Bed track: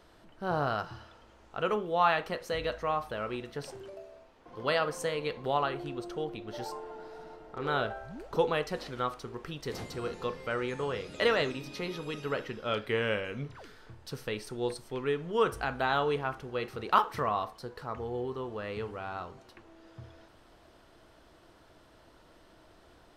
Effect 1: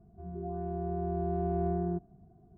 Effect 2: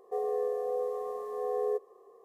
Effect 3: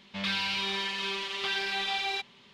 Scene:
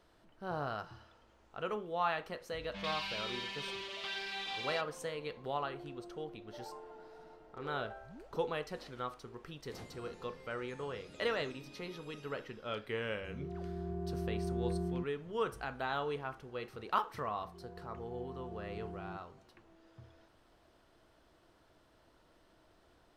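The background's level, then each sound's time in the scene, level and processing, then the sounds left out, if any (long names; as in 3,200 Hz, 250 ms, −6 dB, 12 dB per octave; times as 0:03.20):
bed track −8 dB
0:02.60: mix in 3 −9.5 dB
0:13.05: mix in 1 −4.5 dB + parametric band 760 Hz −10 dB 0.37 octaves
0:17.19: mix in 1 −15 dB
not used: 2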